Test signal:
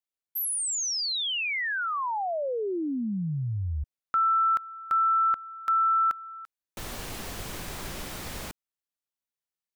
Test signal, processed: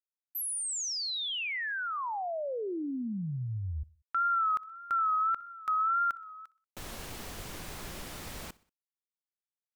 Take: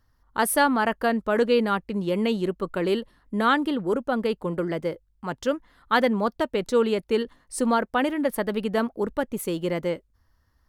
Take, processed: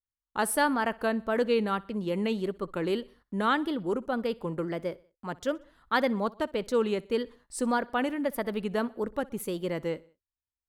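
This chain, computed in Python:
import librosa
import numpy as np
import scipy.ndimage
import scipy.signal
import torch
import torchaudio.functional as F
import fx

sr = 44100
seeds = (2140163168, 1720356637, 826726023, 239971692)

y = fx.gate_hold(x, sr, open_db=-48.0, close_db=-59.0, hold_ms=18.0, range_db=-31, attack_ms=0.56, release_ms=28.0)
y = fx.vibrato(y, sr, rate_hz=1.7, depth_cents=81.0)
y = fx.echo_feedback(y, sr, ms=62, feedback_pct=52, wet_db=-23.0)
y = y * librosa.db_to_amplitude(-5.0)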